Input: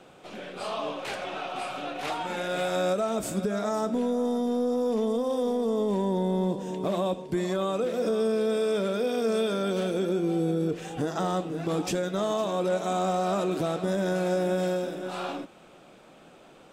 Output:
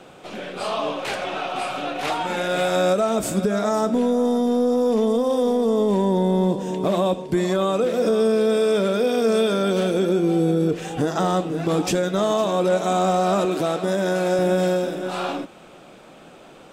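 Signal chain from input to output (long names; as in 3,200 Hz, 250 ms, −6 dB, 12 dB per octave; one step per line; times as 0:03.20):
0:13.45–0:14.39: high-pass filter 240 Hz 6 dB per octave
level +7 dB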